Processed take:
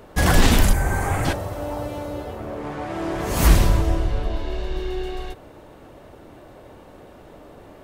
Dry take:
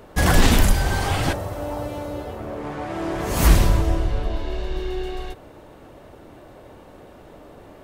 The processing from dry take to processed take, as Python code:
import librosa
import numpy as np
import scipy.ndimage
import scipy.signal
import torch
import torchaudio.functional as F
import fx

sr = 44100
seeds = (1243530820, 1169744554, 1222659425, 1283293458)

y = fx.band_shelf(x, sr, hz=3900.0, db=-14.5, octaves=1.2, at=(0.73, 1.25))